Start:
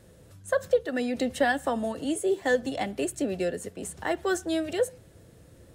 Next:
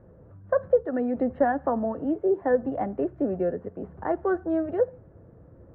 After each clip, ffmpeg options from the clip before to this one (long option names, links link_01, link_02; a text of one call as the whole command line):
ffmpeg -i in.wav -af "lowpass=frequency=1300:width=0.5412,lowpass=frequency=1300:width=1.3066,volume=2.5dB" out.wav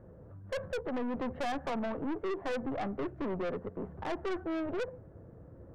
ffmpeg -i in.wav -af "aeval=exprs='(tanh(39.8*val(0)+0.35)-tanh(0.35))/39.8':channel_layout=same" out.wav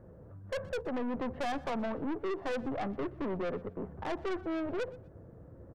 ffmpeg -i in.wav -af "aecho=1:1:122|244:0.075|0.018" out.wav